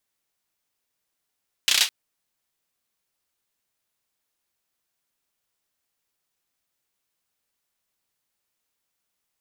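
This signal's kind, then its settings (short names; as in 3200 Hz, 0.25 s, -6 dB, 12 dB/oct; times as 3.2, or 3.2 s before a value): hand clap length 0.21 s, bursts 5, apart 32 ms, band 3400 Hz, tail 0.21 s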